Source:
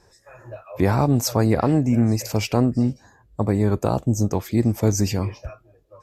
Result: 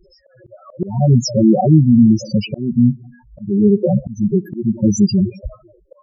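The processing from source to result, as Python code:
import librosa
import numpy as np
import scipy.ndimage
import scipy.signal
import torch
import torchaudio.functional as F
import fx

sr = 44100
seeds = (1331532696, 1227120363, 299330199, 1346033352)

p1 = x + 0.66 * np.pad(x, (int(5.4 * sr / 1000.0), 0))[:len(x)]
p2 = fx.rev_freeverb(p1, sr, rt60_s=0.44, hf_ratio=0.35, predelay_ms=30, drr_db=18.0)
p3 = fx.level_steps(p2, sr, step_db=12)
p4 = p2 + F.gain(torch.from_numpy(p3), 0.0).numpy()
p5 = fx.spec_topn(p4, sr, count=4)
p6 = fx.auto_swell(p5, sr, attack_ms=287.0)
y = F.gain(torch.from_numpy(p6), 6.0).numpy()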